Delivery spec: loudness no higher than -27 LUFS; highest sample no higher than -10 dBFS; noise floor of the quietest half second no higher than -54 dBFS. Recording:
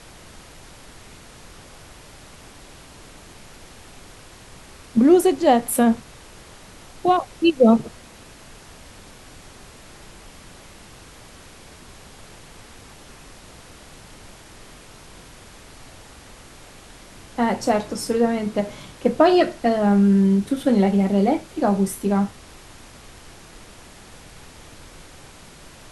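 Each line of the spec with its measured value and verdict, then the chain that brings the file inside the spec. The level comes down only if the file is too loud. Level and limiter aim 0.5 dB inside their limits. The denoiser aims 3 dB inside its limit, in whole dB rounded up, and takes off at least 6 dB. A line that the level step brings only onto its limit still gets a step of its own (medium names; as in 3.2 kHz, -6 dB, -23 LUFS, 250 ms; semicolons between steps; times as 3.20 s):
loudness -19.5 LUFS: fail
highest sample -4.0 dBFS: fail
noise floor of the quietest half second -44 dBFS: fail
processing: noise reduction 6 dB, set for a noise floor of -44 dBFS; trim -8 dB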